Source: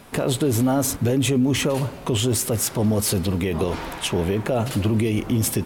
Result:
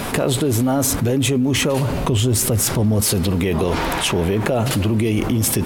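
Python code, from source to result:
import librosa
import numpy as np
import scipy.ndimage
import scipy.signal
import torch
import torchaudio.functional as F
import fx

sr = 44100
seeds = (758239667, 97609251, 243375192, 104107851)

y = fx.low_shelf(x, sr, hz=170.0, db=9.0, at=(1.9, 3.01))
y = fx.env_flatten(y, sr, amount_pct=70)
y = y * librosa.db_to_amplitude(-2.5)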